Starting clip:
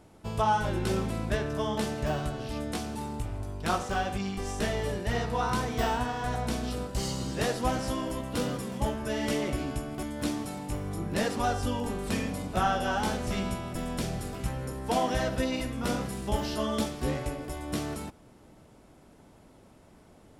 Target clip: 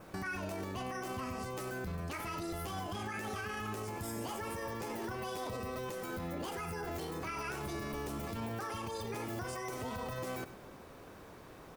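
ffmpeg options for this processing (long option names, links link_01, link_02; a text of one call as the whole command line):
ffmpeg -i in.wav -filter_complex "[0:a]adynamicequalizer=threshold=0.00224:dfrequency=2300:dqfactor=2.8:tfrequency=2300:tqfactor=2.8:attack=5:release=100:ratio=0.375:range=2:mode=cutabove:tftype=bell,acompressor=threshold=-36dB:ratio=6,alimiter=level_in=11dB:limit=-24dB:level=0:latency=1:release=37,volume=-11dB,asplit=2[link_01][link_02];[link_02]aecho=0:1:169:0.188[link_03];[link_01][link_03]amix=inputs=2:normalize=0,asetrate=76440,aresample=44100,volume=3dB" out.wav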